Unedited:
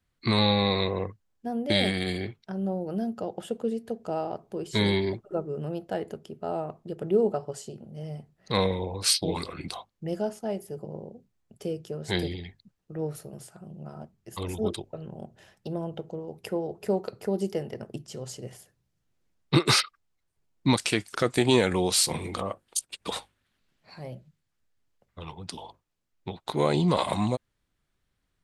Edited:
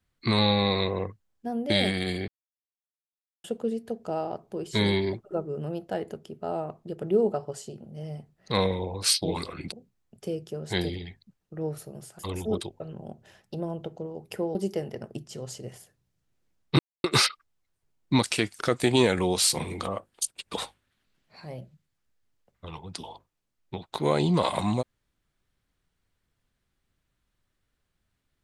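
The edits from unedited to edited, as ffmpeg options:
ffmpeg -i in.wav -filter_complex "[0:a]asplit=7[link_01][link_02][link_03][link_04][link_05][link_06][link_07];[link_01]atrim=end=2.28,asetpts=PTS-STARTPTS,afade=type=out:start_time=2.276:duration=0.004:curve=hsin[link_08];[link_02]atrim=start=2.28:end=3.44,asetpts=PTS-STARTPTS,volume=0[link_09];[link_03]atrim=start=3.44:end=9.722,asetpts=PTS-STARTPTS,afade=type=in:duration=0.004:curve=hsin[link_10];[link_04]atrim=start=11.098:end=13.572[link_11];[link_05]atrim=start=14.318:end=16.682[link_12];[link_06]atrim=start=17.338:end=19.58,asetpts=PTS-STARTPTS,afade=type=out:start_time=2.238:duration=0.004:curve=hsin,apad=pad_dur=0.25[link_13];[link_07]atrim=start=19.58,asetpts=PTS-STARTPTS,afade=type=in:duration=0.004:curve=hsin[link_14];[link_08][link_09][link_10]concat=n=3:v=0:a=1[link_15];[link_15][link_11]acrossfade=duration=0.004:curve1=hsin:curve2=hsin[link_16];[link_16][link_12]acrossfade=duration=0.004:curve1=hsin:curve2=hsin[link_17];[link_13][link_14]concat=n=2:v=0:a=1[link_18];[link_17][link_18]acrossfade=duration=0.004:curve1=hsin:curve2=hsin" out.wav

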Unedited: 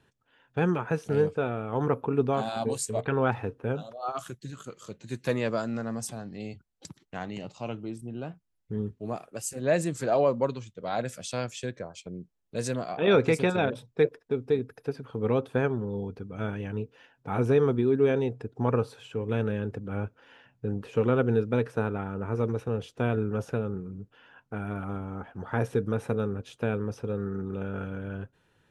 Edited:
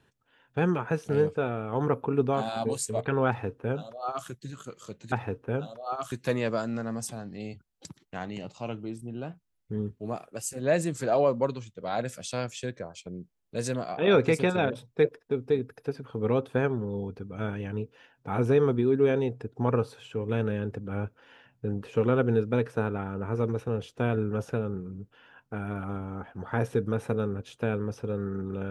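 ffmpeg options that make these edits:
ffmpeg -i in.wav -filter_complex "[0:a]asplit=3[link_01][link_02][link_03];[link_01]atrim=end=5.122[link_04];[link_02]atrim=start=3.278:end=4.282[link_05];[link_03]atrim=start=5.118[link_06];[link_04][link_05]acrossfade=duration=0.004:curve1=hsin:curve2=hsin[link_07];[link_07][link_06]acrossfade=duration=0.004:curve1=hsin:curve2=hsin" out.wav

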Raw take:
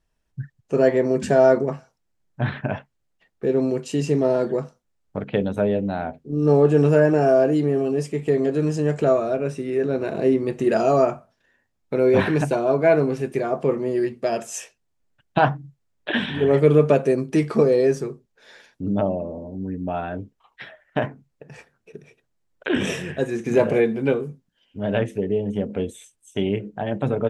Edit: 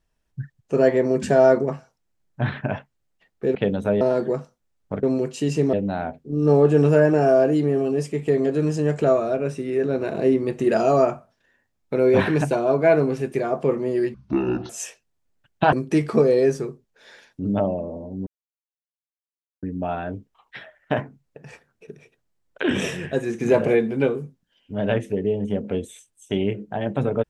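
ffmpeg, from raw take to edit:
ffmpeg -i in.wav -filter_complex "[0:a]asplit=9[link_01][link_02][link_03][link_04][link_05][link_06][link_07][link_08][link_09];[link_01]atrim=end=3.552[link_10];[link_02]atrim=start=5.268:end=5.732[link_11];[link_03]atrim=start=4.248:end=5.272[link_12];[link_04]atrim=start=3.548:end=4.252[link_13];[link_05]atrim=start=5.728:end=14.144[link_14];[link_06]atrim=start=14.14:end=14.44,asetpts=PTS-STARTPTS,asetrate=23814,aresample=44100[link_15];[link_07]atrim=start=14.436:end=15.472[link_16];[link_08]atrim=start=17.138:end=19.68,asetpts=PTS-STARTPTS,afade=type=out:start_time=2.538:duration=0.004:curve=hsin,apad=pad_dur=1.36[link_17];[link_09]atrim=start=19.68,asetpts=PTS-STARTPTS,afade=type=in:duration=0.004:curve=hsin[link_18];[link_10][link_11]acrossfade=duration=0.004:curve1=hsin:curve2=hsin[link_19];[link_19][link_12]acrossfade=duration=0.004:curve1=hsin:curve2=hsin[link_20];[link_20][link_13]acrossfade=duration=0.004:curve1=hsin:curve2=hsin[link_21];[link_21][link_14]acrossfade=duration=0.004:curve1=hsin:curve2=hsin[link_22];[link_22][link_15]acrossfade=duration=0.004:curve1=hsin:curve2=hsin[link_23];[link_23][link_16]acrossfade=duration=0.004:curve1=hsin:curve2=hsin[link_24];[link_17][link_18]concat=n=2:v=0:a=1[link_25];[link_24][link_25]acrossfade=duration=0.004:curve1=hsin:curve2=hsin" out.wav

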